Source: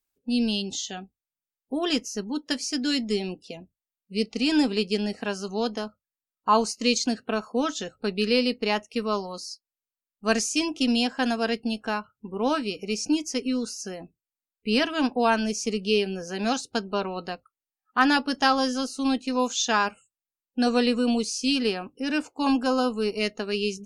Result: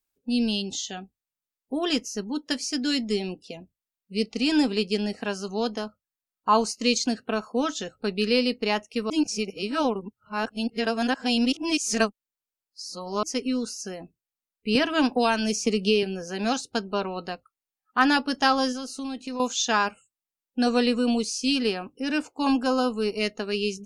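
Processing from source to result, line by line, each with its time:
0:09.10–0:13.23: reverse
0:14.75–0:16.03: multiband upward and downward compressor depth 100%
0:18.72–0:19.40: downward compressor 4 to 1, threshold −30 dBFS

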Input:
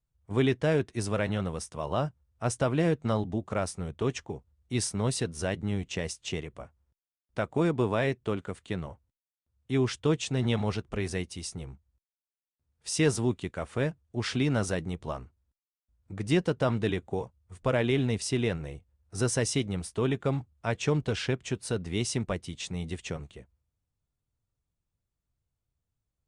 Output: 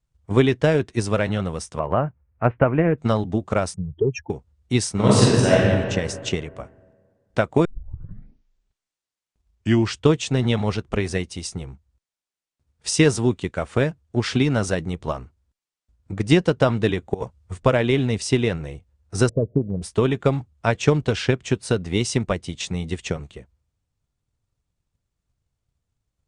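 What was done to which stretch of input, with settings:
0:01.79–0:02.98: Butterworth low-pass 2,500 Hz 48 dB per octave
0:03.74–0:04.30: expanding power law on the bin magnitudes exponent 3.6
0:04.92–0:05.58: thrown reverb, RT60 1.9 s, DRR −8 dB
0:07.65: tape start 2.43 s
0:17.14–0:17.60: compressor whose output falls as the input rises −35 dBFS, ratio −0.5
0:19.29–0:19.82: Chebyshev low-pass with heavy ripple 650 Hz, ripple 3 dB
whole clip: low-pass filter 9,200 Hz 24 dB per octave; transient designer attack +6 dB, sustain +1 dB; level +5.5 dB

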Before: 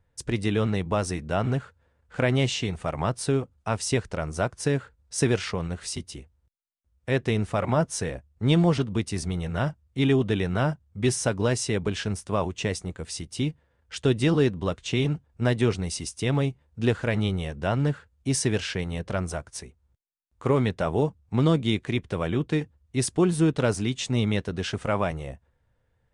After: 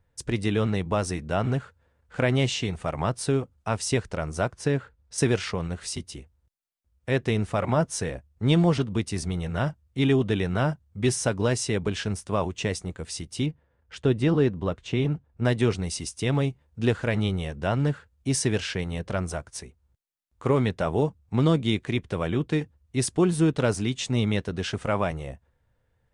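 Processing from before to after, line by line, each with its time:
0:04.52–0:05.18: high-shelf EQ 6,300 Hz −9 dB
0:13.46–0:15.45: high-shelf EQ 3,300 Hz −11.5 dB

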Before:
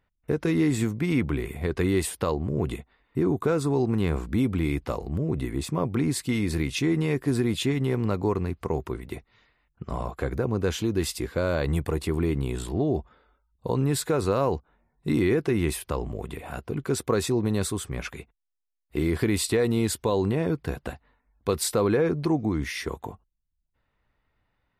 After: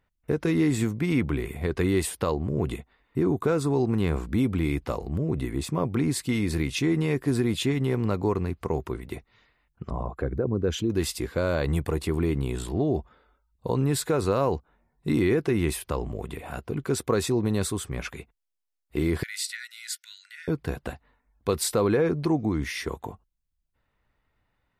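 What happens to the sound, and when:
0:09.90–0:10.90: spectral envelope exaggerated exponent 1.5
0:19.23–0:20.48: Chebyshev high-pass with heavy ripple 1,400 Hz, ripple 6 dB

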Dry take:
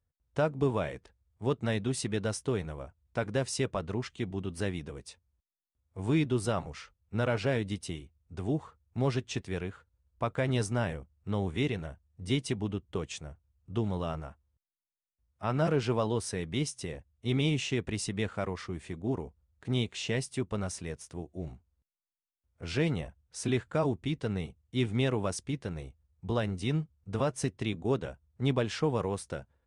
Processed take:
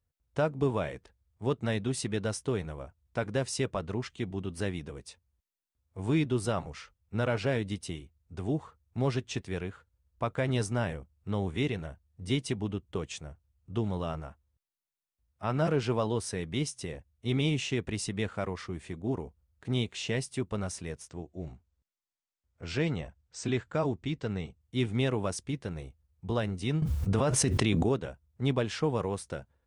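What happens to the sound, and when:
0:21.08–0:24.61: Chebyshev low-pass filter 8,300 Hz, order 8
0:26.82–0:27.89: envelope flattener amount 100%

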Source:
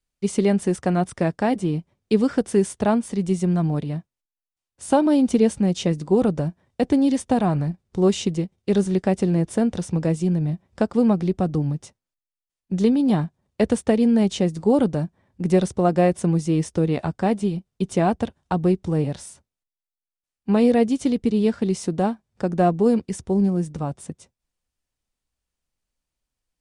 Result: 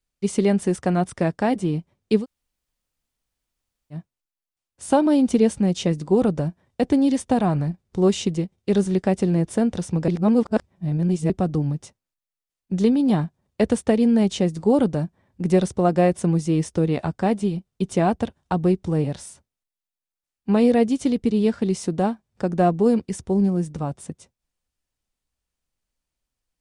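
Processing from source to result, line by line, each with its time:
0:02.21–0:03.95: fill with room tone, crossfade 0.10 s
0:10.08–0:11.30: reverse

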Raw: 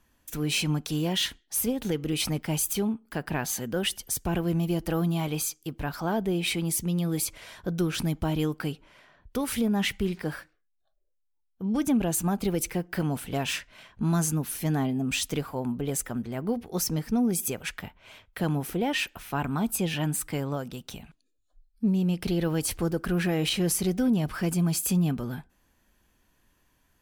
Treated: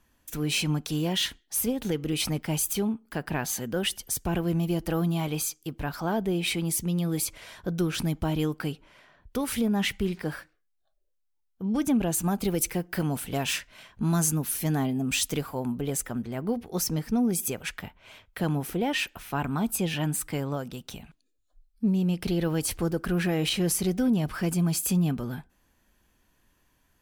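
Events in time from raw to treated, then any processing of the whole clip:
0:12.23–0:15.88: high-shelf EQ 5,800 Hz +5.5 dB

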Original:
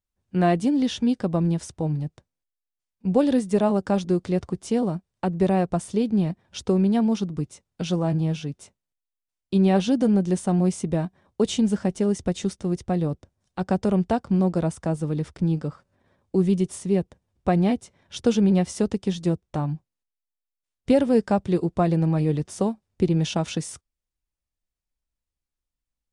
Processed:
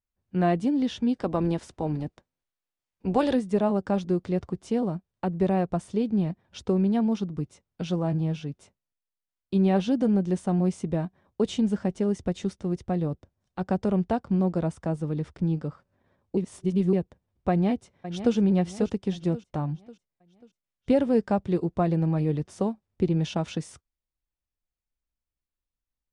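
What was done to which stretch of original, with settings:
0:01.15–0:03.34: ceiling on every frequency bin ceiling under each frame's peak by 13 dB
0:16.37–0:16.93: reverse
0:17.50–0:18.35: delay throw 540 ms, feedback 45%, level −11 dB
whole clip: low-pass filter 3,300 Hz 6 dB per octave; level −3 dB

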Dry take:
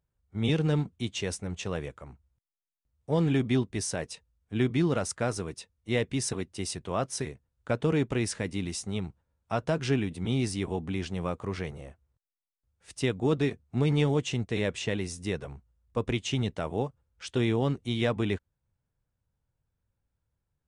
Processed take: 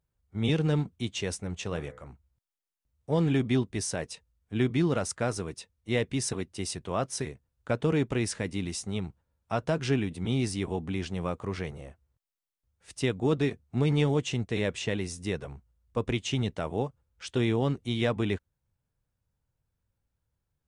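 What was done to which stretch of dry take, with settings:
0:01.67–0:02.07: hum removal 63.07 Hz, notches 35

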